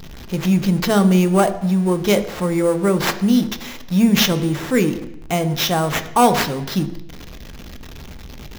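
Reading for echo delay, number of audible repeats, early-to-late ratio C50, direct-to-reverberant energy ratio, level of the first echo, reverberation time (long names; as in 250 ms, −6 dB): no echo audible, no echo audible, 13.5 dB, 8.0 dB, no echo audible, 0.85 s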